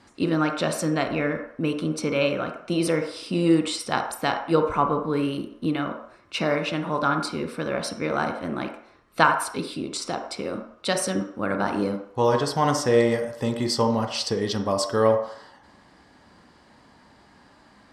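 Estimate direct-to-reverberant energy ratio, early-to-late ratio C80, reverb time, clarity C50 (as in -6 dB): 5.0 dB, 10.0 dB, 0.60 s, 7.5 dB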